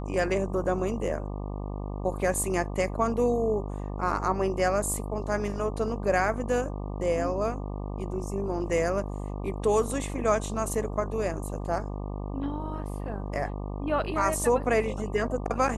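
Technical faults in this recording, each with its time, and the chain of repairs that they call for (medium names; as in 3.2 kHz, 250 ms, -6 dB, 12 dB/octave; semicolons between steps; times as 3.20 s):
buzz 50 Hz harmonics 24 -34 dBFS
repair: de-hum 50 Hz, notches 24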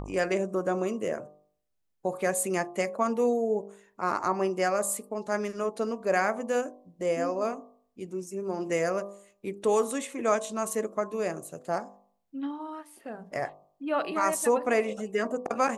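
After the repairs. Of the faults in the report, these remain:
nothing left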